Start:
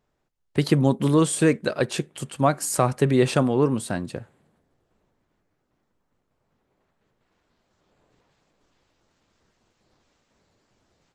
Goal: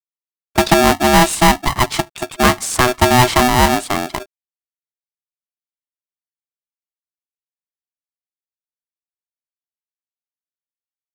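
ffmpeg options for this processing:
ffmpeg -i in.wav -af "afftfilt=real='re*gte(hypot(re,im),0.00891)':imag='im*gte(hypot(re,im),0.00891)':win_size=1024:overlap=0.75,acontrast=85,acrusher=bits=8:mix=0:aa=0.5,adynamicsmooth=sensitivity=7.5:basefreq=3800,aresample=22050,aresample=44100,aeval=exprs='val(0)*sgn(sin(2*PI*500*n/s))':channel_layout=same,volume=1.5dB" out.wav

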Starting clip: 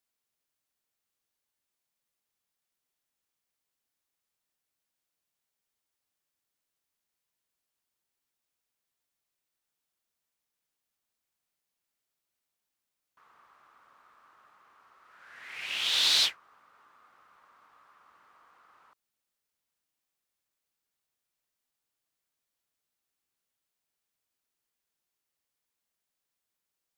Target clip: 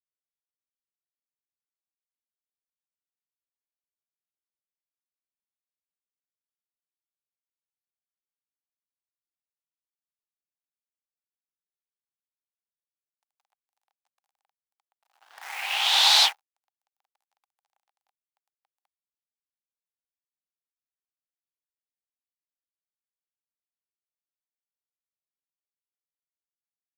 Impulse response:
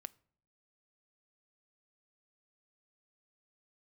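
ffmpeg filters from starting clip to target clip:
-af "acrusher=bits=8:dc=4:mix=0:aa=0.000001,aeval=exprs='sgn(val(0))*max(abs(val(0))-0.00237,0)':channel_layout=same,highpass=frequency=800:width_type=q:width=7.6,volume=5.5dB"

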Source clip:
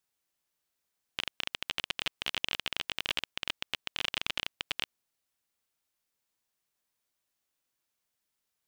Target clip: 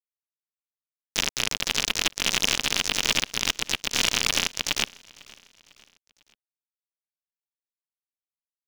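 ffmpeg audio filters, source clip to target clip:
ffmpeg -i in.wav -filter_complex "[0:a]lowpass=5800,equalizer=frequency=220:width=2.5:gain=10.5,asplit=4[link_01][link_02][link_03][link_04];[link_02]asetrate=37084,aresample=44100,atempo=1.18921,volume=-13dB[link_05];[link_03]asetrate=55563,aresample=44100,atempo=0.793701,volume=-7dB[link_06];[link_04]asetrate=88200,aresample=44100,atempo=0.5,volume=-3dB[link_07];[link_01][link_05][link_06][link_07]amix=inputs=4:normalize=0,acrusher=bits=6:dc=4:mix=0:aa=0.000001,aecho=1:1:500|1000|1500:0.0668|0.0301|0.0135,volume=8.5dB" out.wav

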